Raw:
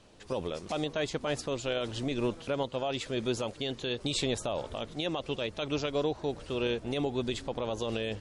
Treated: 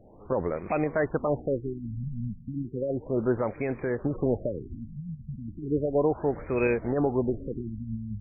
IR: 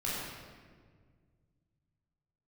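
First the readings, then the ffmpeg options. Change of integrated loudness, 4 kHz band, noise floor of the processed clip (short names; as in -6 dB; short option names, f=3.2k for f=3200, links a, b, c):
+3.5 dB, under -40 dB, -47 dBFS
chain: -af "crystalizer=i=2.5:c=0,afftfilt=real='re*lt(b*sr/1024,220*pow(2600/220,0.5+0.5*sin(2*PI*0.34*pts/sr)))':imag='im*lt(b*sr/1024,220*pow(2600/220,0.5+0.5*sin(2*PI*0.34*pts/sr)))':win_size=1024:overlap=0.75,volume=6dB"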